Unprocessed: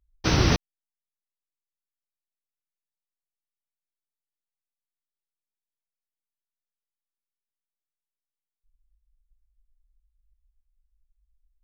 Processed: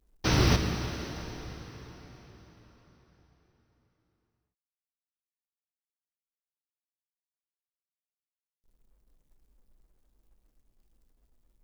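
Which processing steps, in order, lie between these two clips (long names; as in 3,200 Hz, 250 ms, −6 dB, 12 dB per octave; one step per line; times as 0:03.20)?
in parallel at +3 dB: brickwall limiter −20 dBFS, peak gain reduction 11.5 dB
on the sum: log-companded quantiser 6 bits
dense smooth reverb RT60 4.6 s, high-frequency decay 0.85×, DRR 4 dB
level −7.5 dB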